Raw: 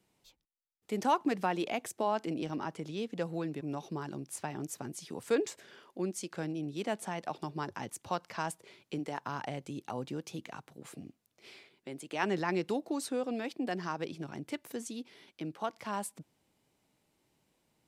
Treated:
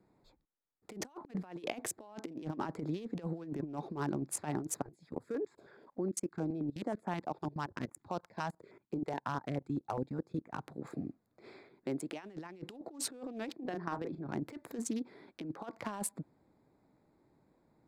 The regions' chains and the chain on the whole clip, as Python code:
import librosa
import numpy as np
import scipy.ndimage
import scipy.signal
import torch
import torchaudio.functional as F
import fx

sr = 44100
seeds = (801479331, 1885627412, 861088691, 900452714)

y = fx.chain(x, sr, fx.level_steps(step_db=20),
    fx.filter_held_notch(hz=9.5, low_hz=250.0, high_hz=4100.0), at=(4.82, 10.53))
y = fx.chain(y, sr, fx.level_steps(step_db=12),
    fx.air_absorb(metres=140.0),
    fx.doubler(ms=36.0, db=-10.5), at=(13.56, 14.29))
y = fx.wiener(y, sr, points=15)
y = fx.peak_eq(y, sr, hz=300.0, db=3.0, octaves=0.6)
y = fx.over_compress(y, sr, threshold_db=-39.0, ratio=-0.5)
y = y * 10.0 ** (1.5 / 20.0)